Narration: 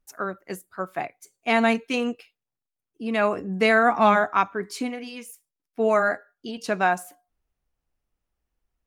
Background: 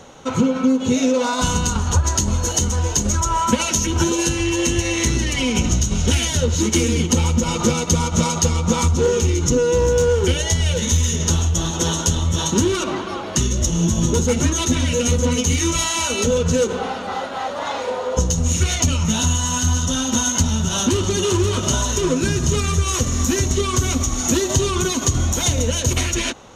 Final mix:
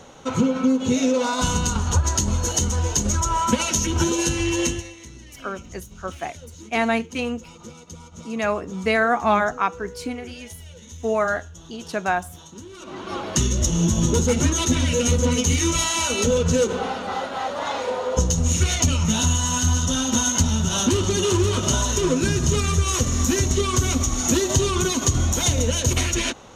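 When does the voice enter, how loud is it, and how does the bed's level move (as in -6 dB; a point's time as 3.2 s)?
5.25 s, -1.0 dB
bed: 4.66 s -2.5 dB
4.97 s -23 dB
12.69 s -23 dB
13.15 s -1.5 dB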